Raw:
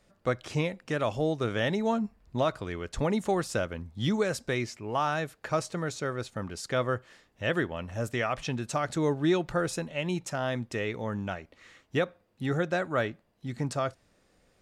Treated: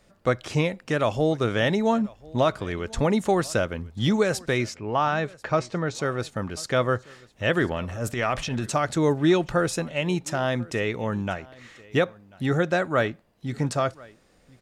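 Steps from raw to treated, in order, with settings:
0:04.74–0:05.95: high-frequency loss of the air 110 metres
0:07.58–0:08.70: transient designer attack −10 dB, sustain +5 dB
single-tap delay 1,040 ms −23.5 dB
level +5.5 dB

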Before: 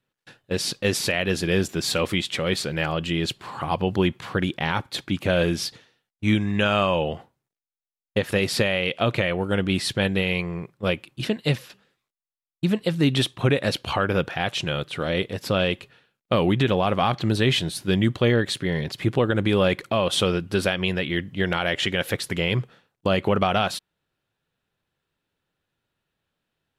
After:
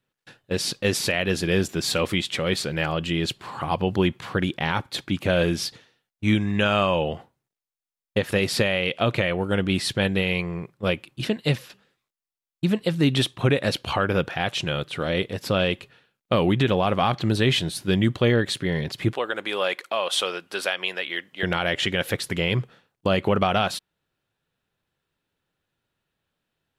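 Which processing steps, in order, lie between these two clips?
0:19.13–0:21.43: high-pass filter 620 Hz 12 dB per octave

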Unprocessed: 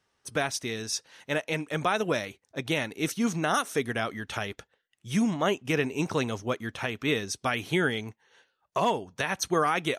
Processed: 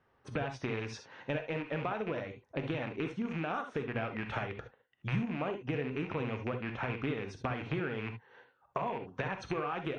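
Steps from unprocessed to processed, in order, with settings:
loose part that buzzes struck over −38 dBFS, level −19 dBFS
low-pass filter 1,600 Hz 12 dB per octave
downward compressor 10 to 1, threshold −38 dBFS, peak gain reduction 17 dB
reverb whose tail is shaped and stops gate 90 ms rising, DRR 6.5 dB
level +5.5 dB
MP3 40 kbit/s 22,050 Hz

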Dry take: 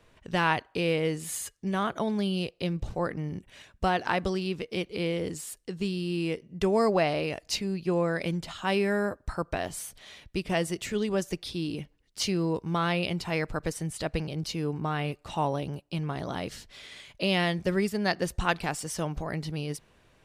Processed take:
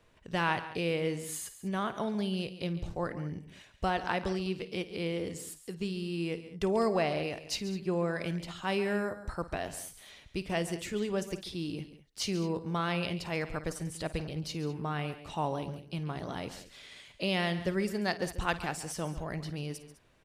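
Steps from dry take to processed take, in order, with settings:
multi-tap delay 53/139/204 ms −16/−14.5/−17.5 dB
level −4.5 dB

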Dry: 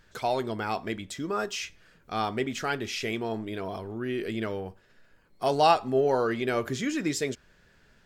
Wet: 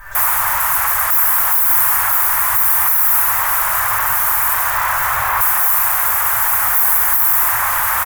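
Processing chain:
camcorder AGC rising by 58 dB per second
comb filter 5.1 ms, depth 78%
feedback delay network reverb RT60 2.9 s, low-frequency decay 1.25×, high-frequency decay 0.55×, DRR −4 dB
in parallel at −3 dB: floating-point word with a short mantissa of 2 bits
on the sum: wrap-around overflow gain 9 dB
notch filter 1,400 Hz, Q 24
sine wavefolder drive 19 dB, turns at −7 dBFS
drawn EQ curve 120 Hz 0 dB, 170 Hz −26 dB, 280 Hz −28 dB, 990 Hz +11 dB, 1,800 Hz +5 dB, 2,900 Hz −10 dB, 4,200 Hz −16 dB, 9,300 Hz +1 dB, 13,000 Hz +14 dB
level −10.5 dB

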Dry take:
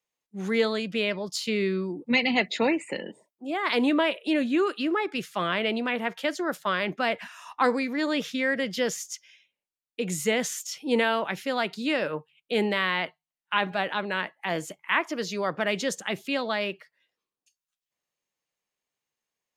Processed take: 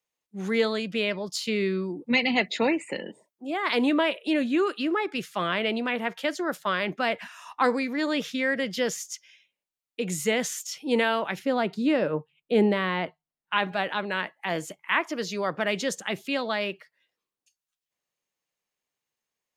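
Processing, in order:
0:11.39–0:13.53: tilt shelving filter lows +6.5 dB

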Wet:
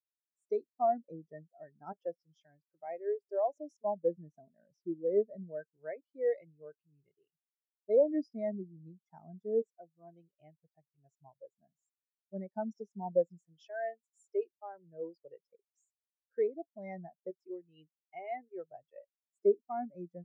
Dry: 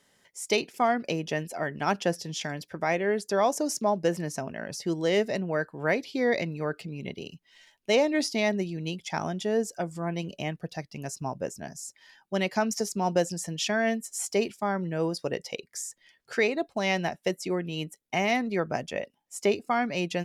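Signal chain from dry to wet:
auto-filter notch square 0.26 Hz 210–2,900 Hz
every bin expanded away from the loudest bin 2.5 to 1
level −4 dB

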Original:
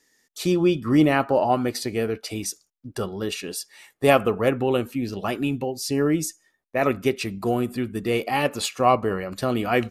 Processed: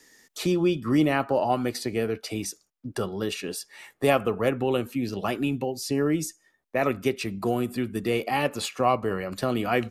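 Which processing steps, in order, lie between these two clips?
multiband upward and downward compressor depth 40%
level −3 dB

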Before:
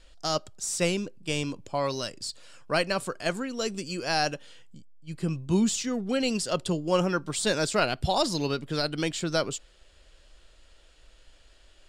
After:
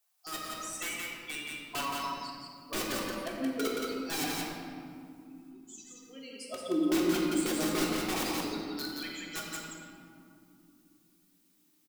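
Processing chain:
spectral dynamics exaggerated over time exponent 3
background noise blue −69 dBFS
0:04.23–0:06.71: downward compressor 6 to 1, threshold −39 dBFS, peak gain reduction 16 dB
auto-filter high-pass sine 0.24 Hz 290–1,600 Hz
wrap-around overflow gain 27 dB
parametric band 270 Hz +11 dB 1.3 octaves
mains-hum notches 50/100/150/200 Hz
convolution reverb RT60 2.7 s, pre-delay 3 ms, DRR −2.5 dB
automatic gain control gain up to 4 dB
single-tap delay 174 ms −3.5 dB
level −8.5 dB

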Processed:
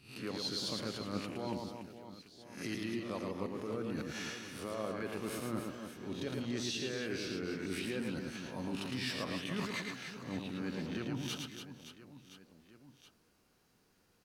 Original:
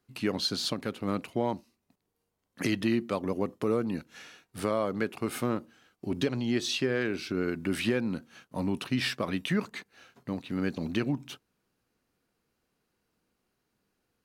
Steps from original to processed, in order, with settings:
peak hold with a rise ahead of every peak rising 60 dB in 0.32 s
parametric band 5,500 Hz +3.5 dB 0.77 octaves
reversed playback
downward compressor 6 to 1, threshold −41 dBFS, peak gain reduction 18 dB
reversed playback
reverse bouncing-ball delay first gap 110 ms, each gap 1.6×, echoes 5
level +3 dB

